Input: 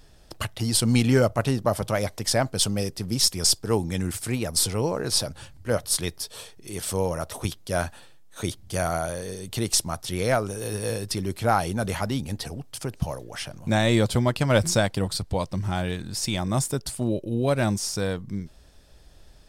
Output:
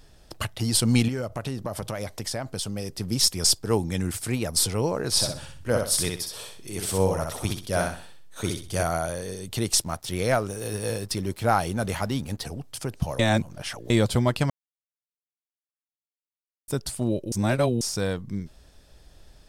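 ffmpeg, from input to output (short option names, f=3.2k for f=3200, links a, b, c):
-filter_complex "[0:a]asettb=1/sr,asplit=3[a][b][c];[a]atrim=end=1.084[d];[b]atrim=start=1.08:end=2.91,asetpts=PTS-STARTPTS,afade=t=in:d=0.004:c=qsin,afade=t=out:st=1.826:d=0.004:c=qsin,acompressor=threshold=-27dB:ratio=5:attack=3.2:release=140:knee=1:detection=peak[e];[c]atrim=start=2.906[f];[d][e]acrossfade=d=0.004:c1=hsin:c2=qsin[g];[g][f]acrossfade=d=0.004:c1=qsin:c2=hsin,asettb=1/sr,asplit=3[h][i][j];[h]atrim=end=5.104[k];[i]atrim=start=5.1:end=8.83,asetpts=PTS-STARTPTS,afade=t=in:d=0.004:c=qsin,afade=t=out:st=3.726:d=0.004:c=qsin,aecho=1:1:63|126|189|252:0.631|0.196|0.0606|0.0188,atrim=end_sample=164493[l];[j]atrim=start=8.826[m];[k][l]acrossfade=d=0.004:c1=hsin:c2=qsin[n];[n][m]acrossfade=d=0.004:c1=qsin:c2=hsin,asettb=1/sr,asplit=3[o][p][q];[o]atrim=end=9.824[r];[p]atrim=start=9.82:end=12.45,asetpts=PTS-STARTPTS,afade=t=in:d=0.004:c=qsin,afade=t=out:st=2.626:d=0.004:c=qsin,aeval=exprs='sgn(val(0))*max(abs(val(0))-0.00355,0)':c=same[s];[q]atrim=start=12.446[t];[r][s]acrossfade=d=0.004:c1=hsin:c2=qsin[u];[u][t]acrossfade=d=0.004:c1=qsin:c2=hsin,asplit=7[v][w][x][y][z][aa][ab];[v]atrim=end=13.192[ac];[w]atrim=start=13.188:end=13.902,asetpts=PTS-STARTPTS,areverse[ad];[x]atrim=start=13.898:end=14.5,asetpts=PTS-STARTPTS,afade=t=out:st=0.598:d=0.004:c=hsin[ae];[y]atrim=start=14.5:end=16.68,asetpts=PTS-STARTPTS,volume=0[af];[z]atrim=start=16.68:end=17.322,asetpts=PTS-STARTPTS,afade=t=in:d=0.004:c=hsin[ag];[aa]atrim=start=17.318:end=17.812,asetpts=PTS-STARTPTS,areverse[ah];[ab]atrim=start=17.808[ai];[ac][ad]acrossfade=d=0.004:c1=hsin:c2=hsin[aj];[ae][af][ag]concat=n=3:v=0:a=1[ak];[aj][ak]acrossfade=d=0.004:c1=hsin:c2=hsin[al];[al][ah]acrossfade=d=0.004:c1=hsin:c2=hsin[am];[am][ai]acrossfade=d=0.004:c1=hsin:c2=hsin"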